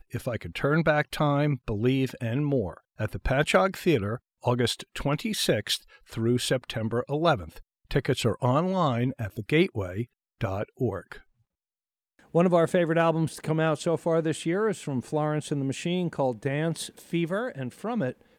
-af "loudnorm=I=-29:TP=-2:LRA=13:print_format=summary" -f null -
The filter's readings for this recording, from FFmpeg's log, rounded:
Input Integrated:    -27.5 LUFS
Input True Peak:      -8.5 dBTP
Input LRA:             3.6 LU
Input Threshold:     -37.7 LUFS